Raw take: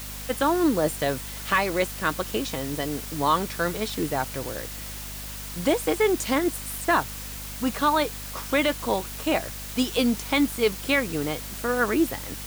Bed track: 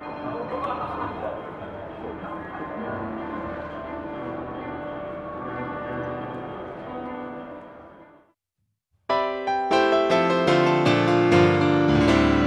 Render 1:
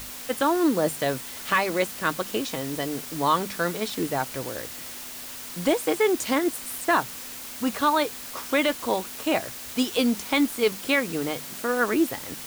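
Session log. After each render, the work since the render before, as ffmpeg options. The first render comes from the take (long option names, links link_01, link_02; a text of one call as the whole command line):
ffmpeg -i in.wav -af "bandreject=frequency=50:width_type=h:width=6,bandreject=frequency=100:width_type=h:width=6,bandreject=frequency=150:width_type=h:width=6,bandreject=frequency=200:width_type=h:width=6" out.wav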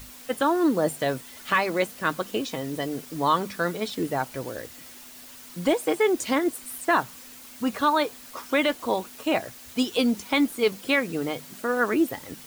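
ffmpeg -i in.wav -af "afftdn=noise_reduction=8:noise_floor=-38" out.wav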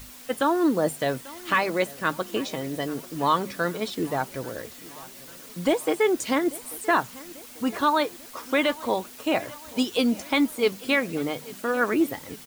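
ffmpeg -i in.wav -af "aecho=1:1:841|1682|2523|3364:0.0944|0.0538|0.0307|0.0175" out.wav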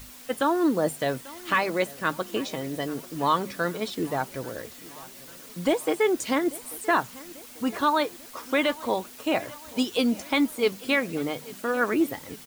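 ffmpeg -i in.wav -af "volume=-1dB" out.wav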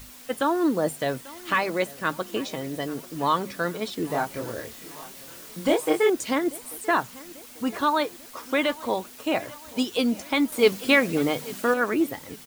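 ffmpeg -i in.wav -filter_complex "[0:a]asettb=1/sr,asplit=3[link_01][link_02][link_03];[link_01]atrim=end=4.074[link_04];[link_02]atrim=start=4.07:end=6.1,asetpts=PTS-STARTPTS,afade=type=in:duration=0.004:curve=qsin,afade=type=out:start_time=2.026:duration=0.004:curve=qsin,asplit=2[link_05][link_06];[link_06]adelay=26,volume=-2dB[link_07];[link_05][link_07]amix=inputs=2:normalize=0,atrim=end_sample=89523[link_08];[link_03]atrim=start=6.096[link_09];[link_04][link_08]acrossfade=duration=0.004:curve1=hsin:curve2=qsin[link_10];[link_10][link_09]acrossfade=duration=0.004:curve1=qsin:curve2=hsin,asettb=1/sr,asplit=3[link_11][link_12][link_13];[link_11]atrim=end=10.524[link_14];[link_12]atrim=start=10.52:end=11.74,asetpts=PTS-STARTPTS,afade=type=in:duration=0.004:curve=qsin,afade=type=out:start_time=1.216:duration=0.004:curve=qsin,acontrast=36[link_15];[link_13]atrim=start=11.736[link_16];[link_14][link_15]acrossfade=duration=0.004:curve1=hsin:curve2=qsin[link_17];[link_17][link_16]acrossfade=duration=0.004:curve1=qsin:curve2=hsin" out.wav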